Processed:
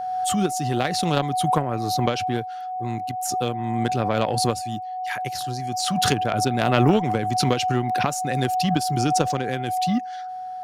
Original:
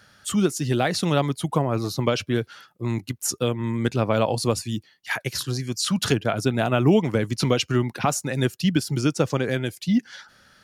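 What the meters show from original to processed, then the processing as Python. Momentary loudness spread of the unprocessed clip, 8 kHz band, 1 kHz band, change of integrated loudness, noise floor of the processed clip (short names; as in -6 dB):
7 LU, 0.0 dB, +9.5 dB, +0.5 dB, -33 dBFS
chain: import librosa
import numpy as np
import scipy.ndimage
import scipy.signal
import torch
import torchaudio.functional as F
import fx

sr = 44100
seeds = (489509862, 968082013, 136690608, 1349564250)

y = x + 10.0 ** (-25.0 / 20.0) * np.sin(2.0 * np.pi * 740.0 * np.arange(len(x)) / sr)
y = fx.cheby_harmonics(y, sr, harmonics=(3,), levels_db=(-15,), full_scale_db=-5.5)
y = fx.pre_swell(y, sr, db_per_s=24.0)
y = F.gain(torch.from_numpy(y), 1.5).numpy()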